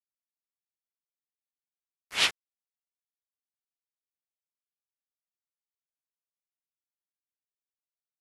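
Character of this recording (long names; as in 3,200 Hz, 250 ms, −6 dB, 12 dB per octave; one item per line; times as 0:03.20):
a quantiser's noise floor 6 bits, dither none
tremolo saw up 3 Hz, depth 55%
AAC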